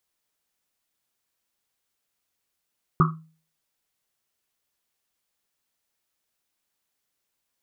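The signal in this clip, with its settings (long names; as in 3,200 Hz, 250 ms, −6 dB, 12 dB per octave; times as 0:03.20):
drum after Risset, pitch 160 Hz, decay 0.42 s, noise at 1,200 Hz, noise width 290 Hz, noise 45%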